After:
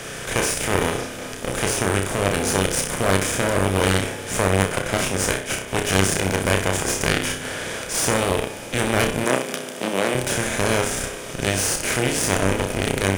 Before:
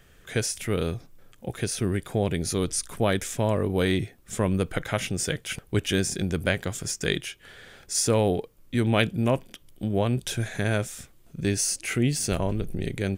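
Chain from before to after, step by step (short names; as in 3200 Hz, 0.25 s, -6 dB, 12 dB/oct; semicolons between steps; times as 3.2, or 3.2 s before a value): per-bin compression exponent 0.4; low shelf 360 Hz -8 dB; 4.76–5.68 gate -24 dBFS, range -10 dB; in parallel at -9 dB: Schmitt trigger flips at -18 dBFS; on the sum: reverb RT60 4.2 s, pre-delay 51 ms, DRR 10.5 dB; dynamic EQ 4100 Hz, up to -4 dB, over -35 dBFS, Q 1.1; on a send: flutter echo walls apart 5.4 m, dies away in 0.4 s; on the sum: added harmonics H 4 -10 dB, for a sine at -2 dBFS; 9.24–10.15 HPF 170 Hz 24 dB/oct; gain -1.5 dB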